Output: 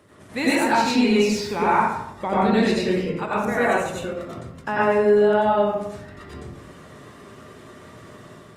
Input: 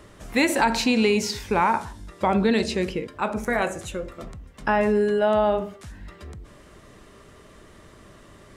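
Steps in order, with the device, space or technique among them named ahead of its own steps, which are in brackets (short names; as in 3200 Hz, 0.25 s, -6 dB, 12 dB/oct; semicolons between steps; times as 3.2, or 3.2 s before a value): far-field microphone of a smart speaker (reverb RT60 0.80 s, pre-delay 83 ms, DRR -7 dB; HPF 85 Hz 24 dB/oct; AGC gain up to 3.5 dB; gain -5.5 dB; Opus 32 kbps 48000 Hz)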